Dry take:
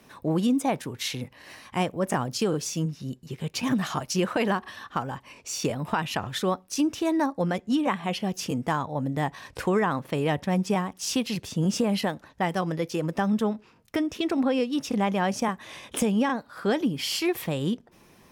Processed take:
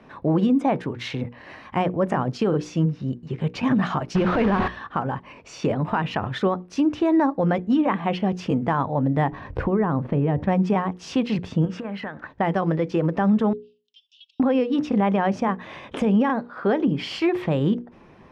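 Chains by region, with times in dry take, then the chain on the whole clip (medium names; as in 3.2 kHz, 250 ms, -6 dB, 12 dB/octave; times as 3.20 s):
4.15–4.68 s: one-bit delta coder 64 kbps, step -23.5 dBFS + low-pass 4.4 kHz + bass shelf 180 Hz +10.5 dB
9.32–10.47 s: tilt EQ -3 dB/octave + compression 3:1, threshold -25 dBFS
11.65–12.27 s: peaking EQ 1.6 kHz +13 dB 1.2 oct + compression 16:1, threshold -33 dBFS
13.53–14.40 s: steep high-pass 2.9 kHz 96 dB/octave + compression 2:1, threshold -44 dBFS + distance through air 160 m
16.46–16.88 s: high-pass 350 Hz 6 dB/octave + tilt EQ -1.5 dB/octave
whole clip: Bessel low-pass 1.7 kHz, order 2; hum notches 60/120/180/240/300/360/420/480 Hz; peak limiter -20 dBFS; trim +7.5 dB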